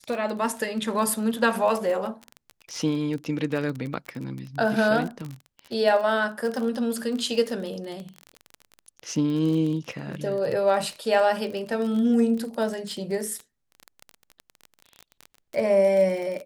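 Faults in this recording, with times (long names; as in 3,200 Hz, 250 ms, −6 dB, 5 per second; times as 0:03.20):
surface crackle 28 per second −29 dBFS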